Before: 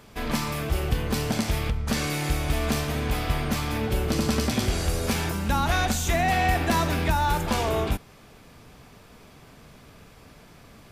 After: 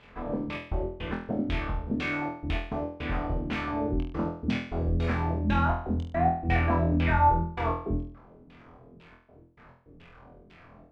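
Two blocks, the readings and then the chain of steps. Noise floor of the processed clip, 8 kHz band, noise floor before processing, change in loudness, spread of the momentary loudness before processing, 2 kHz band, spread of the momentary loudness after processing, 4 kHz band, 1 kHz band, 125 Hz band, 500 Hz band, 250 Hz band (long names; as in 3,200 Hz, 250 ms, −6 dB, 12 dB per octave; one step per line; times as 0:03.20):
−55 dBFS, below −25 dB, −51 dBFS, −3.0 dB, 5 LU, −5.0 dB, 9 LU, −13.0 dB, −1.5 dB, −3.0 dB, −3.5 dB, −2.0 dB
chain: surface crackle 93 per second −33 dBFS
gate pattern "xxxx.x.x.xxx" 105 BPM −60 dB
auto-filter low-pass saw down 2 Hz 220–3,100 Hz
flutter between parallel walls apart 4.1 metres, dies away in 0.5 s
level −7 dB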